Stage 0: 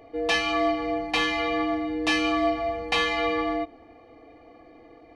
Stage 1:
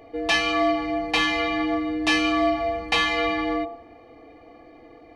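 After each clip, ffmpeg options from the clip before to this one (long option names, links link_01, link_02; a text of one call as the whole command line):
ffmpeg -i in.wav -af "bandreject=frequency=52.86:width_type=h:width=4,bandreject=frequency=105.72:width_type=h:width=4,bandreject=frequency=158.58:width_type=h:width=4,bandreject=frequency=211.44:width_type=h:width=4,bandreject=frequency=264.3:width_type=h:width=4,bandreject=frequency=317.16:width_type=h:width=4,bandreject=frequency=370.02:width_type=h:width=4,bandreject=frequency=422.88:width_type=h:width=4,bandreject=frequency=475.74:width_type=h:width=4,bandreject=frequency=528.6:width_type=h:width=4,bandreject=frequency=581.46:width_type=h:width=4,bandreject=frequency=634.32:width_type=h:width=4,bandreject=frequency=687.18:width_type=h:width=4,bandreject=frequency=740.04:width_type=h:width=4,bandreject=frequency=792.9:width_type=h:width=4,bandreject=frequency=845.76:width_type=h:width=4,bandreject=frequency=898.62:width_type=h:width=4,bandreject=frequency=951.48:width_type=h:width=4,bandreject=frequency=1004.34:width_type=h:width=4,bandreject=frequency=1057.2:width_type=h:width=4,bandreject=frequency=1110.06:width_type=h:width=4,bandreject=frequency=1162.92:width_type=h:width=4,bandreject=frequency=1215.78:width_type=h:width=4,bandreject=frequency=1268.64:width_type=h:width=4,bandreject=frequency=1321.5:width_type=h:width=4,bandreject=frequency=1374.36:width_type=h:width=4,bandreject=frequency=1427.22:width_type=h:width=4,bandreject=frequency=1480.08:width_type=h:width=4,volume=3dB" out.wav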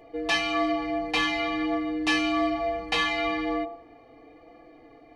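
ffmpeg -i in.wav -af "flanger=delay=5.8:depth=1.5:regen=-41:speed=1.1:shape=sinusoidal" out.wav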